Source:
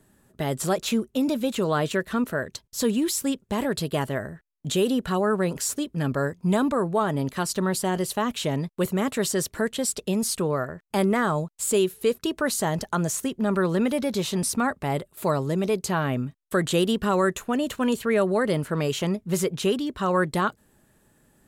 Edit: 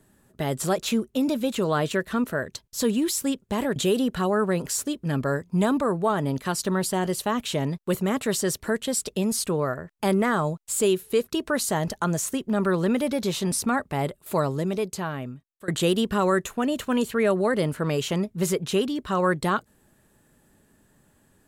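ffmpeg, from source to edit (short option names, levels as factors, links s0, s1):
-filter_complex "[0:a]asplit=3[s0][s1][s2];[s0]atrim=end=3.762[s3];[s1]atrim=start=4.668:end=16.59,asetpts=PTS-STARTPTS,afade=t=out:st=10.672:d=1.25:silence=0.0891251[s4];[s2]atrim=start=16.59,asetpts=PTS-STARTPTS,afade=t=in:d=0.004:c=hsin:silence=0.0891251[s5];[s4][s5]concat=n=2:v=0:a=1[s6];[s3][s6]acrossfade=d=0.004:c1=hsin:c2=hsin"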